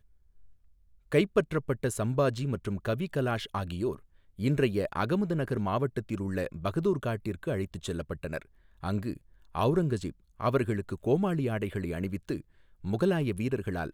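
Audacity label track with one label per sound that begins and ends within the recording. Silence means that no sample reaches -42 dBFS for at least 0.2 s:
1.120000	3.960000	sound
4.390000	8.420000	sound
8.830000	9.170000	sound
9.550000	10.110000	sound
10.400000	12.410000	sound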